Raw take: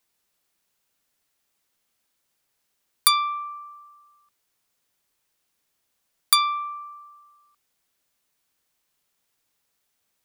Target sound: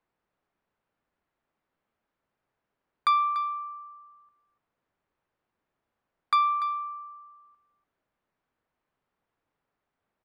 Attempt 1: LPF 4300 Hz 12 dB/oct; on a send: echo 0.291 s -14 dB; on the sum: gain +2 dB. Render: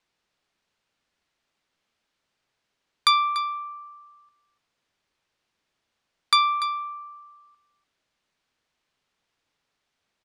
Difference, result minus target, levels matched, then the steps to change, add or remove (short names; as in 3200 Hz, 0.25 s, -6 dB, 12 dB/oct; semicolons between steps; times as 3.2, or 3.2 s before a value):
4000 Hz band +11.5 dB
change: LPF 1400 Hz 12 dB/oct